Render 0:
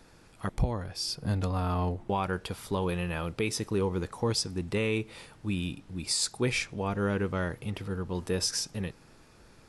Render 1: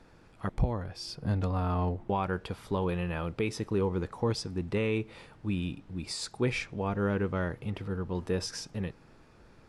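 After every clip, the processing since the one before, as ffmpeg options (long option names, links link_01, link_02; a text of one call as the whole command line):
ffmpeg -i in.wav -af "lowpass=frequency=2300:poles=1" out.wav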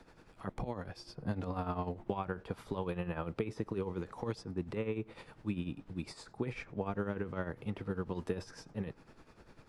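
ffmpeg -i in.wav -filter_complex "[0:a]equalizer=frequency=72:width=0.59:gain=-3,acrossover=split=130|1800[link_01][link_02][link_03];[link_01]acompressor=threshold=-45dB:ratio=4[link_04];[link_02]acompressor=threshold=-33dB:ratio=4[link_05];[link_03]acompressor=threshold=-54dB:ratio=4[link_06];[link_04][link_05][link_06]amix=inputs=3:normalize=0,tremolo=f=10:d=0.69,volume=2dB" out.wav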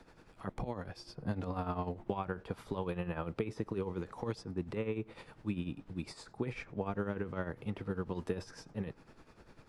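ffmpeg -i in.wav -af anull out.wav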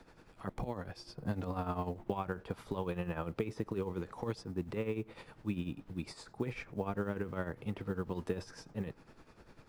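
ffmpeg -i in.wav -af "acrusher=bits=9:mode=log:mix=0:aa=0.000001" out.wav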